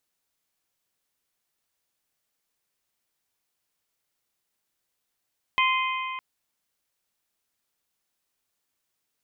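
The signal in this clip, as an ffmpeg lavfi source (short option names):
-f lavfi -i "aevalsrc='0.0891*pow(10,-3*t/2.89)*sin(2*PI*1040*t)+0.0708*pow(10,-3*t/2.347)*sin(2*PI*2080*t)+0.0562*pow(10,-3*t/2.222)*sin(2*PI*2496*t)+0.0447*pow(10,-3*t/2.079)*sin(2*PI*3120*t)':d=0.61:s=44100"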